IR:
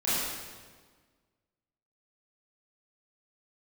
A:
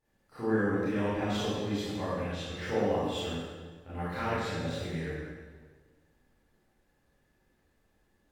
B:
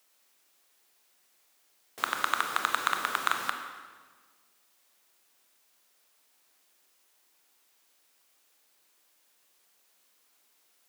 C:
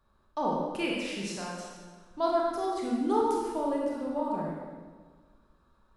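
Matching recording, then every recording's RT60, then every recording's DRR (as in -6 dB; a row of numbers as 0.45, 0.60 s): A; 1.5, 1.5, 1.5 s; -12.0, 5.0, -3.5 dB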